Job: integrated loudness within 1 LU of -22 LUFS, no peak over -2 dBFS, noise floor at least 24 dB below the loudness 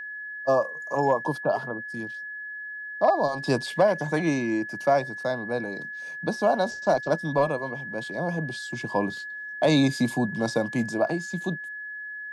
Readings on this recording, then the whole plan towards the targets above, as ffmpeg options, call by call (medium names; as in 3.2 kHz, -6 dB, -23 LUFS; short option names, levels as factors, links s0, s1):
steady tone 1.7 kHz; tone level -34 dBFS; loudness -26.5 LUFS; peak level -10.0 dBFS; loudness target -22.0 LUFS
-> -af "bandreject=f=1700:w=30"
-af "volume=1.68"